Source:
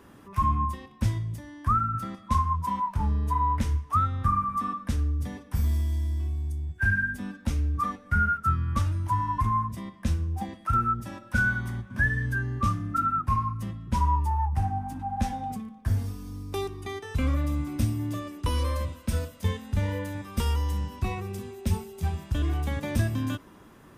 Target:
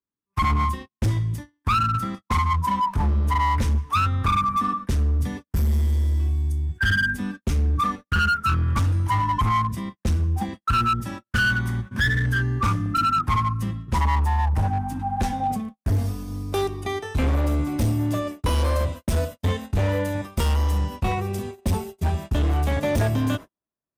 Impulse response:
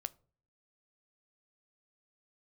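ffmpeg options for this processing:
-af "agate=range=-51dB:threshold=-39dB:ratio=16:detection=peak,asetnsamples=n=441:p=0,asendcmd='15.4 equalizer g 9',equalizer=f=640:t=o:w=0.4:g=-6.5,volume=24.5dB,asoftclip=hard,volume=-24.5dB,volume=7dB"

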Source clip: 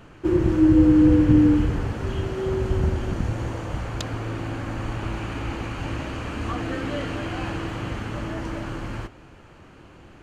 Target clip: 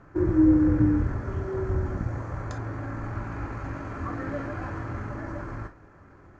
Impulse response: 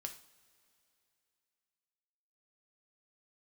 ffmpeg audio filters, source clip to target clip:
-filter_complex "[0:a]lowpass=f=6.3k:t=q:w=1.9,equalizer=f=2.9k:t=o:w=0.26:g=-9,atempo=1.6,highshelf=f=2.3k:t=q:w=1.5:g=-11[a];[1:a]atrim=start_sample=2205,atrim=end_sample=3087[b];[a][b]afir=irnorm=-1:irlink=0,volume=-1dB"

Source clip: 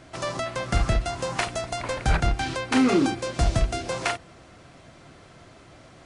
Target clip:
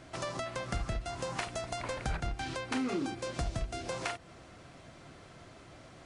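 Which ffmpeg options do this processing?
-af "acompressor=threshold=-32dB:ratio=2.5,volume=-3.5dB"

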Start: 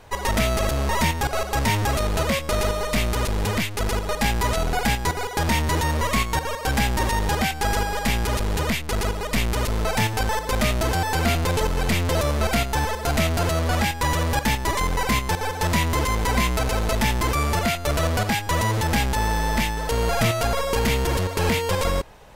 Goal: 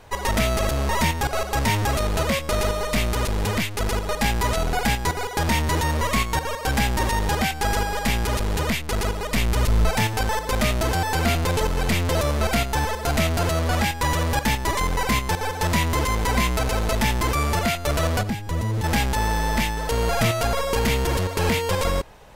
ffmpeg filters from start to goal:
-filter_complex "[0:a]asettb=1/sr,asplit=3[a][b][c];[a]atrim=end=9.364[d];[b]atrim=start=9.36:end=9.9,asetpts=PTS-STARTPTS,afade=t=in:d=0.004:c=qsin,afade=t=out:st=0.536:d=0.004:c=qsin,asubboost=boost=8.5:cutoff=250[e];[c]atrim=start=9.896[f];[d][e]acrossfade=d=0.004:c1=hsin:c2=qsin[g];[g][f]acrossfade=d=0.004:c1=qsin:c2=hsin,asettb=1/sr,asplit=3[h][i][j];[h]atrim=end=18.214[k];[i]atrim=start=18.21:end=18.84,asetpts=PTS-STARTPTS,afade=t=in:d=0.004:c=qsin,afade=t=out:st=0.626:d=0.004:c=qsin,acrossover=split=410[l][m];[m]acompressor=threshold=-35dB:ratio=4[n];[l][n]amix=inputs=2:normalize=0[o];[j]atrim=start=18.836[p];[k][o]acrossfade=d=0.004:c1=hsin:c2=qsin[q];[q][p]acrossfade=d=0.004:c1=qsin:c2=hsin"

